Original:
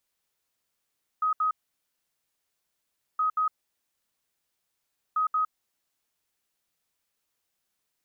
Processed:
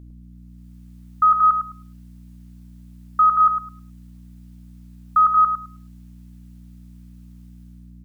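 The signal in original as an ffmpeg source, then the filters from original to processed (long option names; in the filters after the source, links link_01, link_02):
-f lavfi -i "aevalsrc='0.0794*sin(2*PI*1260*t)*clip(min(mod(mod(t,1.97),0.18),0.11-mod(mod(t,1.97),0.18))/0.005,0,1)*lt(mod(t,1.97),0.36)':duration=5.91:sample_rate=44100"
-filter_complex "[0:a]dynaudnorm=framelen=240:gausssize=5:maxgain=12dB,aeval=exprs='val(0)+0.00891*(sin(2*PI*60*n/s)+sin(2*PI*2*60*n/s)/2+sin(2*PI*3*60*n/s)/3+sin(2*PI*4*60*n/s)/4+sin(2*PI*5*60*n/s)/5)':channel_layout=same,asplit=2[link_01][link_02];[link_02]adelay=105,lowpass=frequency=1100:poles=1,volume=-5dB,asplit=2[link_03][link_04];[link_04]adelay=105,lowpass=frequency=1100:poles=1,volume=0.27,asplit=2[link_05][link_06];[link_06]adelay=105,lowpass=frequency=1100:poles=1,volume=0.27,asplit=2[link_07][link_08];[link_08]adelay=105,lowpass=frequency=1100:poles=1,volume=0.27[link_09];[link_01][link_03][link_05][link_07][link_09]amix=inputs=5:normalize=0"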